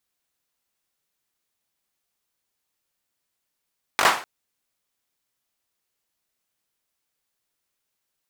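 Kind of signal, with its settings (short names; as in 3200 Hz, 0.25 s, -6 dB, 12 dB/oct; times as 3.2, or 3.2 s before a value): hand clap length 0.25 s, apart 20 ms, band 1000 Hz, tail 0.40 s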